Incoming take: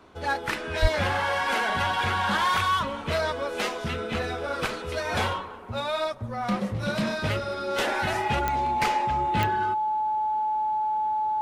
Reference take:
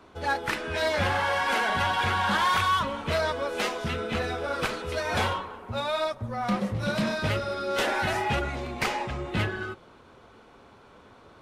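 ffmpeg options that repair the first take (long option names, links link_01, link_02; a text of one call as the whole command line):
ffmpeg -i in.wav -filter_complex "[0:a]adeclick=threshold=4,bandreject=frequency=860:width=30,asplit=3[link_01][link_02][link_03];[link_01]afade=type=out:start_time=0.81:duration=0.02[link_04];[link_02]highpass=frequency=140:width=0.5412,highpass=frequency=140:width=1.3066,afade=type=in:start_time=0.81:duration=0.02,afade=type=out:start_time=0.93:duration=0.02[link_05];[link_03]afade=type=in:start_time=0.93:duration=0.02[link_06];[link_04][link_05][link_06]amix=inputs=3:normalize=0" out.wav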